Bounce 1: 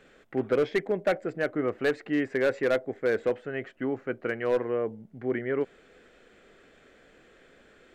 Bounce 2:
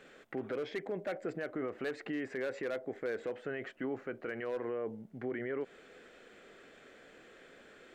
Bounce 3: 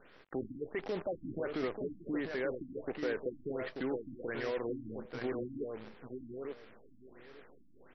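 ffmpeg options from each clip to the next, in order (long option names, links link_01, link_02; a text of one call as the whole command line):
ffmpeg -i in.wav -af "lowshelf=frequency=110:gain=-11.5,acompressor=threshold=-28dB:ratio=6,alimiter=level_in=6dB:limit=-24dB:level=0:latency=1:release=37,volume=-6dB,volume=1dB" out.wav
ffmpeg -i in.wav -af "acrusher=bits=8:dc=4:mix=0:aa=0.000001,aecho=1:1:886|1772|2658:0.501|0.0852|0.0145,afftfilt=real='re*lt(b*sr/1024,300*pow(6000/300,0.5+0.5*sin(2*PI*1.4*pts/sr)))':imag='im*lt(b*sr/1024,300*pow(6000/300,0.5+0.5*sin(2*PI*1.4*pts/sr)))':win_size=1024:overlap=0.75,volume=1dB" out.wav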